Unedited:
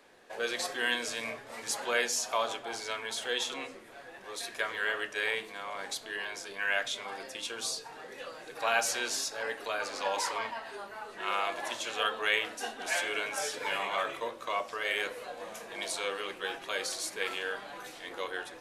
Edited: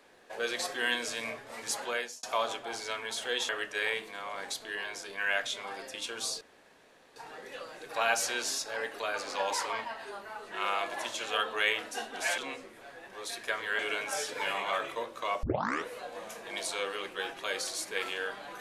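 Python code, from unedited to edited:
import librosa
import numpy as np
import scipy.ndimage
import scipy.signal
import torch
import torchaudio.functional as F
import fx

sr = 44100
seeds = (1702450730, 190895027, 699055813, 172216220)

y = fx.edit(x, sr, fx.fade_out_span(start_s=1.78, length_s=0.45),
    fx.move(start_s=3.49, length_s=1.41, to_s=13.04),
    fx.insert_room_tone(at_s=7.82, length_s=0.75),
    fx.tape_start(start_s=14.68, length_s=0.45), tone=tone)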